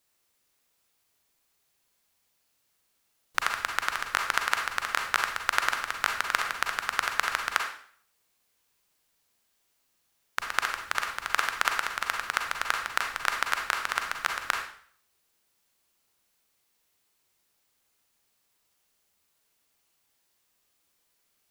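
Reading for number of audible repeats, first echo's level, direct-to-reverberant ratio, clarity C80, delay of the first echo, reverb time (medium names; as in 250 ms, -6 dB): no echo, no echo, 2.5 dB, 9.0 dB, no echo, 0.55 s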